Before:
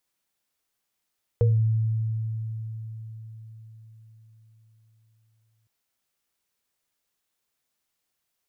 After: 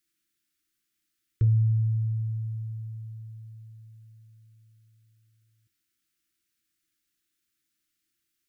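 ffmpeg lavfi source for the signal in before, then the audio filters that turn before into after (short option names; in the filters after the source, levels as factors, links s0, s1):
-f lavfi -i "aevalsrc='0.158*pow(10,-3*t/4.99)*sin(2*PI*111*t)+0.106*pow(10,-3*t/0.26)*sin(2*PI*473*t)':d=4.26:s=44100"
-af "asuperstop=centerf=670:order=8:qfactor=0.7,equalizer=f=330:t=o:w=0.29:g=11,bandreject=f=88.22:t=h:w=4,bandreject=f=176.44:t=h:w=4,bandreject=f=264.66:t=h:w=4,bandreject=f=352.88:t=h:w=4,bandreject=f=441.1:t=h:w=4,bandreject=f=529.32:t=h:w=4,bandreject=f=617.54:t=h:w=4,bandreject=f=705.76:t=h:w=4,bandreject=f=793.98:t=h:w=4,bandreject=f=882.2:t=h:w=4,bandreject=f=970.42:t=h:w=4,bandreject=f=1058.64:t=h:w=4,bandreject=f=1146.86:t=h:w=4,bandreject=f=1235.08:t=h:w=4,bandreject=f=1323.3:t=h:w=4,bandreject=f=1411.52:t=h:w=4"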